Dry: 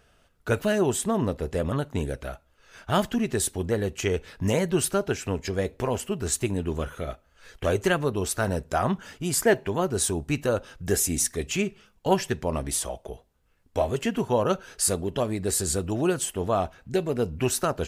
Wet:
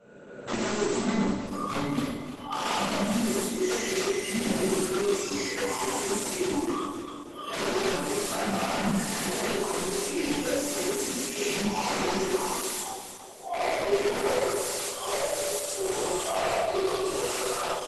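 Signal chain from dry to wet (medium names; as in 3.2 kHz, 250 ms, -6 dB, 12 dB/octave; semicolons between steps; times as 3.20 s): reverse spectral sustain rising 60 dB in 2.12 s; spectral noise reduction 28 dB; dynamic bell 4.6 kHz, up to -4 dB, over -41 dBFS, Q 2.2; compression 16:1, threshold -29 dBFS, peak gain reduction 18 dB; integer overflow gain 27 dB; high-pass sweep 230 Hz -> 510 Hz, 11.75–15.17 s; feedback comb 290 Hz, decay 1.1 s, mix 80%; sine folder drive 7 dB, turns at -31.5 dBFS; feedback delay 314 ms, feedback 41%, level -10 dB; reverberation RT60 0.65 s, pre-delay 10 ms, DRR -5 dB; resampled via 32 kHz; Opus 12 kbps 48 kHz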